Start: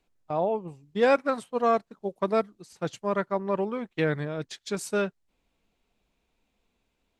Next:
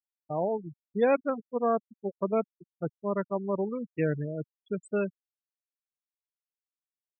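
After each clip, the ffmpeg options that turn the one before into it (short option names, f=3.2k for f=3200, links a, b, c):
-af "afftfilt=real='re*gte(hypot(re,im),0.0631)':imag='im*gte(hypot(re,im),0.0631)':win_size=1024:overlap=0.75,equalizer=f=1.4k:t=o:w=2.4:g=-6"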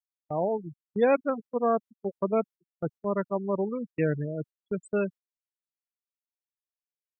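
-af "agate=range=-22dB:threshold=-43dB:ratio=16:detection=peak,volume=1.5dB"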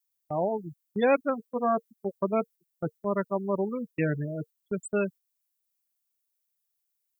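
-af "aemphasis=mode=production:type=75kf,bandreject=f=460:w=12"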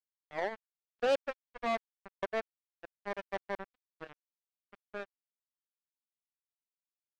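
-af "aeval=exprs='val(0)+0.5*0.0168*sgn(val(0))':c=same,bandpass=f=630:t=q:w=1.8:csg=0,acrusher=bits=3:mix=0:aa=0.5,volume=-6dB"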